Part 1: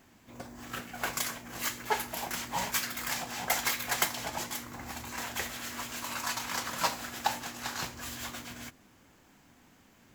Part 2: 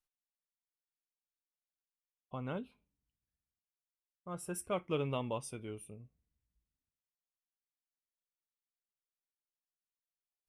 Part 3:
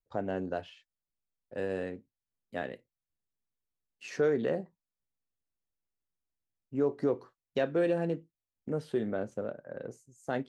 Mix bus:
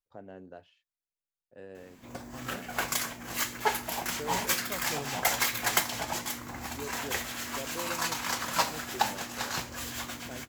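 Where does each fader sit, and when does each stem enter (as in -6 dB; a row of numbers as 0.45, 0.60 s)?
+2.5, -5.0, -13.0 dB; 1.75, 0.00, 0.00 s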